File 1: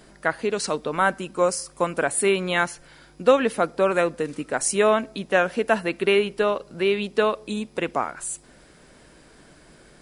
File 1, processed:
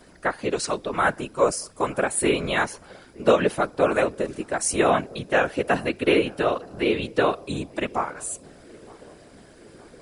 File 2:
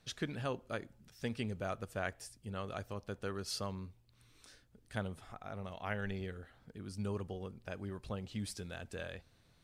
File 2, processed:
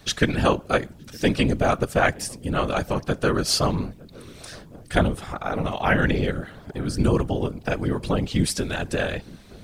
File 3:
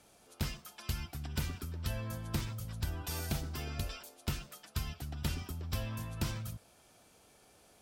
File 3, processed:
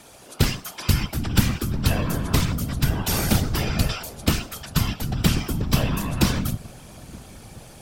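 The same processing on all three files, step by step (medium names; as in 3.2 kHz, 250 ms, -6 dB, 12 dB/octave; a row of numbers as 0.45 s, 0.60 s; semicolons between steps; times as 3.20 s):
whisper effect; filtered feedback delay 917 ms, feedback 76%, low-pass 880 Hz, level -22.5 dB; normalise loudness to -24 LUFS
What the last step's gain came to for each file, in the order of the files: -1.0 dB, +18.5 dB, +16.0 dB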